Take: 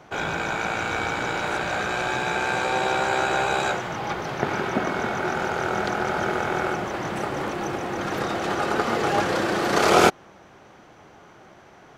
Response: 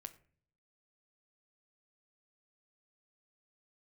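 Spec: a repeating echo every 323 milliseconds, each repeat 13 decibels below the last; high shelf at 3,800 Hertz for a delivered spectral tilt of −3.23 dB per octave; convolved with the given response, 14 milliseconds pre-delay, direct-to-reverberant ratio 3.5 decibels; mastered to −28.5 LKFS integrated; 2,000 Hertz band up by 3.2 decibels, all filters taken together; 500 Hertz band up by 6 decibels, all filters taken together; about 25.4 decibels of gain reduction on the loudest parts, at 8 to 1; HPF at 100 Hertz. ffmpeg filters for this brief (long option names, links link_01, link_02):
-filter_complex "[0:a]highpass=100,equalizer=frequency=500:width_type=o:gain=7.5,equalizer=frequency=2000:width_type=o:gain=6,highshelf=frequency=3800:gain=-8.5,acompressor=threshold=-35dB:ratio=8,aecho=1:1:323|646|969:0.224|0.0493|0.0108,asplit=2[link_01][link_02];[1:a]atrim=start_sample=2205,adelay=14[link_03];[link_02][link_03]afir=irnorm=-1:irlink=0,volume=2dB[link_04];[link_01][link_04]amix=inputs=2:normalize=0,volume=7.5dB"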